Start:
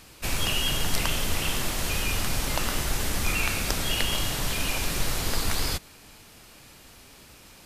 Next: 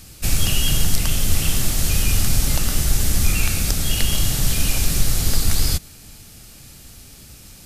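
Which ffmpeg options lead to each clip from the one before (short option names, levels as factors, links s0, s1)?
-filter_complex "[0:a]bass=f=250:g=12,treble=f=4000:g=10,bandreject=f=1000:w=8,asplit=2[s0][s1];[s1]alimiter=limit=0.531:level=0:latency=1:release=486,volume=1.06[s2];[s0][s2]amix=inputs=2:normalize=0,volume=0.473"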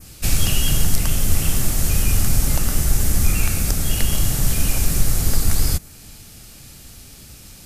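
-af "adynamicequalizer=threshold=0.01:dfrequency=3700:dqfactor=1:tfrequency=3700:tqfactor=1:attack=5:release=100:ratio=0.375:range=3.5:mode=cutabove:tftype=bell,volume=1.12"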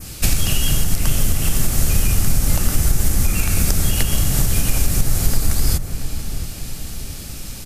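-filter_complex "[0:a]acompressor=threshold=0.1:ratio=6,asplit=2[s0][s1];[s1]adelay=679,lowpass=f=1200:p=1,volume=0.376,asplit=2[s2][s3];[s3]adelay=679,lowpass=f=1200:p=1,volume=0.52,asplit=2[s4][s5];[s5]adelay=679,lowpass=f=1200:p=1,volume=0.52,asplit=2[s6][s7];[s7]adelay=679,lowpass=f=1200:p=1,volume=0.52,asplit=2[s8][s9];[s9]adelay=679,lowpass=f=1200:p=1,volume=0.52,asplit=2[s10][s11];[s11]adelay=679,lowpass=f=1200:p=1,volume=0.52[s12];[s2][s4][s6][s8][s10][s12]amix=inputs=6:normalize=0[s13];[s0][s13]amix=inputs=2:normalize=0,volume=2.51"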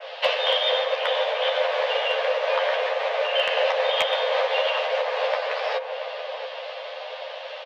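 -filter_complex "[0:a]asplit=2[s0][s1];[s1]adelay=12,volume=0.668[s2];[s0][s2]amix=inputs=2:normalize=0,highpass=f=170:t=q:w=0.5412,highpass=f=170:t=q:w=1.307,lowpass=f=3300:t=q:w=0.5176,lowpass=f=3300:t=q:w=0.7071,lowpass=f=3300:t=q:w=1.932,afreqshift=360,asoftclip=type=hard:threshold=0.178,volume=1.58"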